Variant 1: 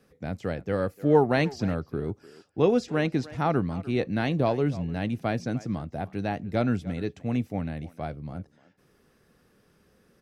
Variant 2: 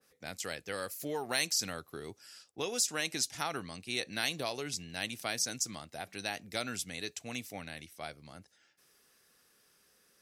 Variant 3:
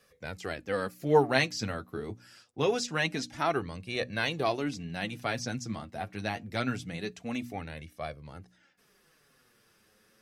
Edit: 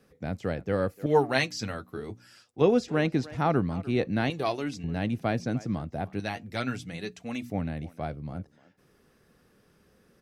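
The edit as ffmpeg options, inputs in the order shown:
-filter_complex "[2:a]asplit=3[s0][s1][s2];[0:a]asplit=4[s3][s4][s5][s6];[s3]atrim=end=1.062[s7];[s0]atrim=start=1.058:end=2.612[s8];[s4]atrim=start=2.608:end=4.302[s9];[s1]atrim=start=4.298:end=4.842[s10];[s5]atrim=start=4.838:end=6.202[s11];[s2]atrim=start=6.198:end=7.502[s12];[s6]atrim=start=7.498[s13];[s7][s8]acrossfade=d=0.004:c1=hsin:c2=hsin[s14];[s14][s9]acrossfade=d=0.004:c1=hsin:c2=hsin[s15];[s15][s10]acrossfade=d=0.004:c1=hsin:c2=hsin[s16];[s16][s11]acrossfade=d=0.004:c1=hsin:c2=hsin[s17];[s17][s12]acrossfade=d=0.004:c1=hsin:c2=hsin[s18];[s18][s13]acrossfade=d=0.004:c1=hsin:c2=hsin"

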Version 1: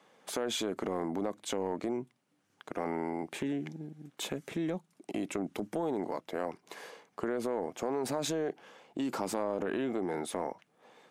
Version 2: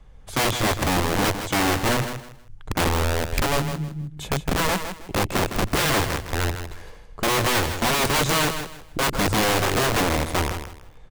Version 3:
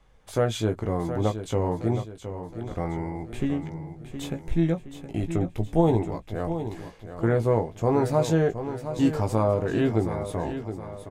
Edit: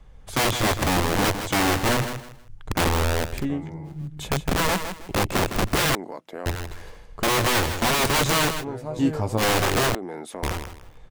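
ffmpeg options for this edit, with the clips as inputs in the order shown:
-filter_complex "[2:a]asplit=2[s0][s1];[0:a]asplit=2[s2][s3];[1:a]asplit=5[s4][s5][s6][s7][s8];[s4]atrim=end=3.46[s9];[s0]atrim=start=3.22:end=4.07[s10];[s5]atrim=start=3.83:end=5.952[s11];[s2]atrim=start=5.948:end=6.462[s12];[s6]atrim=start=6.458:end=8.65[s13];[s1]atrim=start=8.59:end=9.43[s14];[s7]atrim=start=9.37:end=9.952[s15];[s3]atrim=start=9.948:end=10.432[s16];[s8]atrim=start=10.428[s17];[s9][s10]acrossfade=d=0.24:c1=tri:c2=tri[s18];[s18][s11]acrossfade=d=0.24:c1=tri:c2=tri[s19];[s19][s12]acrossfade=d=0.004:c1=hsin:c2=hsin[s20];[s20][s13]acrossfade=d=0.004:c1=hsin:c2=hsin[s21];[s21][s14]acrossfade=d=0.06:c1=tri:c2=tri[s22];[s22][s15]acrossfade=d=0.06:c1=tri:c2=tri[s23];[s23][s16]acrossfade=d=0.004:c1=hsin:c2=hsin[s24];[s24][s17]acrossfade=d=0.004:c1=hsin:c2=hsin"

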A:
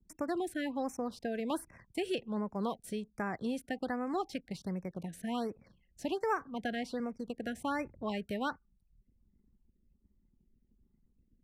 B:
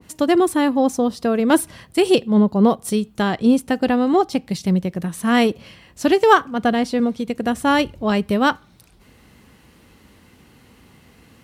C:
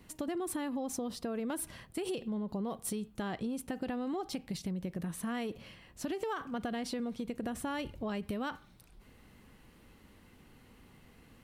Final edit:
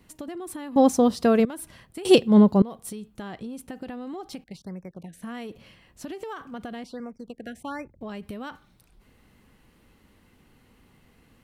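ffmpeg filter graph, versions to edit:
-filter_complex "[1:a]asplit=2[s0][s1];[0:a]asplit=2[s2][s3];[2:a]asplit=5[s4][s5][s6][s7][s8];[s4]atrim=end=0.762[s9];[s0]atrim=start=0.758:end=1.452[s10];[s5]atrim=start=1.448:end=2.052[s11];[s1]atrim=start=2.048:end=2.622[s12];[s6]atrim=start=2.618:end=4.442[s13];[s2]atrim=start=4.438:end=5.222[s14];[s7]atrim=start=5.218:end=6.842[s15];[s3]atrim=start=6.838:end=8.012[s16];[s8]atrim=start=8.008[s17];[s9][s10]acrossfade=d=0.004:c1=hsin:c2=hsin[s18];[s18][s11]acrossfade=d=0.004:c1=hsin:c2=hsin[s19];[s19][s12]acrossfade=d=0.004:c1=hsin:c2=hsin[s20];[s20][s13]acrossfade=d=0.004:c1=hsin:c2=hsin[s21];[s21][s14]acrossfade=d=0.004:c1=hsin:c2=hsin[s22];[s22][s15]acrossfade=d=0.004:c1=hsin:c2=hsin[s23];[s23][s16]acrossfade=d=0.004:c1=hsin:c2=hsin[s24];[s24][s17]acrossfade=d=0.004:c1=hsin:c2=hsin"

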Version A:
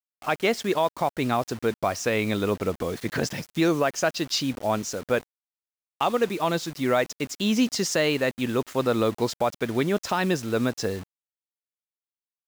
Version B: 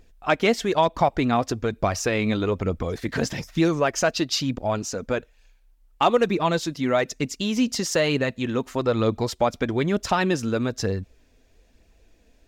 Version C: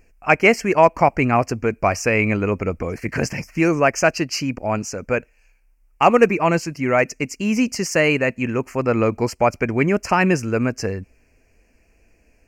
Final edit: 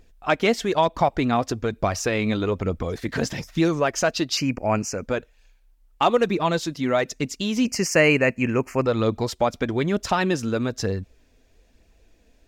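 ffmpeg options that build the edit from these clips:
-filter_complex "[2:a]asplit=2[s0][s1];[1:a]asplit=3[s2][s3][s4];[s2]atrim=end=4.372[s5];[s0]atrim=start=4.368:end=5.032[s6];[s3]atrim=start=5.028:end=7.652[s7];[s1]atrim=start=7.648:end=8.862[s8];[s4]atrim=start=8.858[s9];[s5][s6]acrossfade=d=0.004:c1=hsin:c2=hsin[s10];[s10][s7]acrossfade=d=0.004:c1=hsin:c2=hsin[s11];[s11][s8]acrossfade=d=0.004:c1=hsin:c2=hsin[s12];[s12][s9]acrossfade=d=0.004:c1=hsin:c2=hsin"

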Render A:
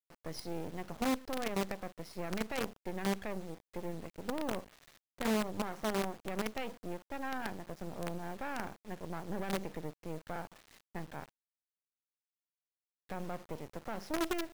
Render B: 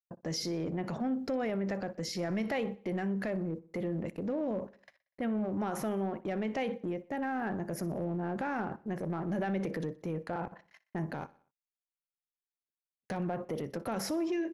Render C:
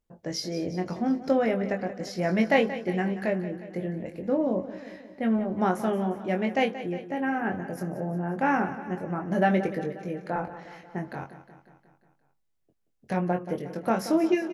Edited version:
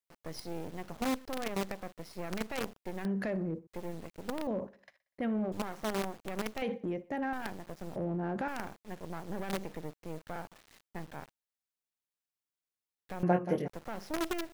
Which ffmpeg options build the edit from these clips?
-filter_complex "[1:a]asplit=4[s0][s1][s2][s3];[0:a]asplit=6[s4][s5][s6][s7][s8][s9];[s4]atrim=end=3.052[s10];[s0]atrim=start=3.048:end=3.672[s11];[s5]atrim=start=3.668:end=4.472[s12];[s1]atrim=start=4.468:end=5.522[s13];[s6]atrim=start=5.518:end=6.622[s14];[s2]atrim=start=6.618:end=7.332[s15];[s7]atrim=start=7.328:end=7.962[s16];[s3]atrim=start=7.958:end=8.482[s17];[s8]atrim=start=8.478:end=13.232[s18];[2:a]atrim=start=13.228:end=13.682[s19];[s9]atrim=start=13.678[s20];[s10][s11]acrossfade=d=0.004:c1=hsin:c2=hsin[s21];[s21][s12]acrossfade=d=0.004:c1=hsin:c2=hsin[s22];[s22][s13]acrossfade=d=0.004:c1=hsin:c2=hsin[s23];[s23][s14]acrossfade=d=0.004:c1=hsin:c2=hsin[s24];[s24][s15]acrossfade=d=0.004:c1=hsin:c2=hsin[s25];[s25][s16]acrossfade=d=0.004:c1=hsin:c2=hsin[s26];[s26][s17]acrossfade=d=0.004:c1=hsin:c2=hsin[s27];[s27][s18]acrossfade=d=0.004:c1=hsin:c2=hsin[s28];[s28][s19]acrossfade=d=0.004:c1=hsin:c2=hsin[s29];[s29][s20]acrossfade=d=0.004:c1=hsin:c2=hsin"

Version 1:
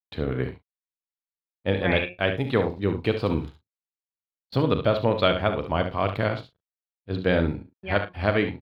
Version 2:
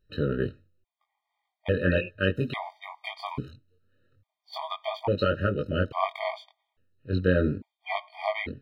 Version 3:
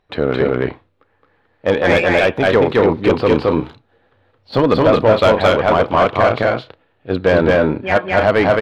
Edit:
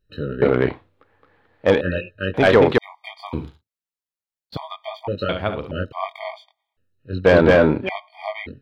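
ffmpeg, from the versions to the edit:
-filter_complex "[2:a]asplit=3[s0][s1][s2];[0:a]asplit=2[s3][s4];[1:a]asplit=6[s5][s6][s7][s8][s9][s10];[s5]atrim=end=0.422[s11];[s0]atrim=start=0.418:end=1.812[s12];[s6]atrim=start=1.808:end=2.342[s13];[s1]atrim=start=2.338:end=2.782[s14];[s7]atrim=start=2.778:end=3.332[s15];[s3]atrim=start=3.328:end=4.572[s16];[s8]atrim=start=4.568:end=5.292[s17];[s4]atrim=start=5.288:end=5.712[s18];[s9]atrim=start=5.708:end=7.252[s19];[s2]atrim=start=7.248:end=7.892[s20];[s10]atrim=start=7.888[s21];[s11][s12]acrossfade=d=0.004:c1=hsin:c2=hsin[s22];[s22][s13]acrossfade=d=0.004:c1=hsin:c2=hsin[s23];[s23][s14]acrossfade=d=0.004:c1=hsin:c2=hsin[s24];[s24][s15]acrossfade=d=0.004:c1=hsin:c2=hsin[s25];[s25][s16]acrossfade=d=0.004:c1=hsin:c2=hsin[s26];[s26][s17]acrossfade=d=0.004:c1=hsin:c2=hsin[s27];[s27][s18]acrossfade=d=0.004:c1=hsin:c2=hsin[s28];[s28][s19]acrossfade=d=0.004:c1=hsin:c2=hsin[s29];[s29][s20]acrossfade=d=0.004:c1=hsin:c2=hsin[s30];[s30][s21]acrossfade=d=0.004:c1=hsin:c2=hsin"

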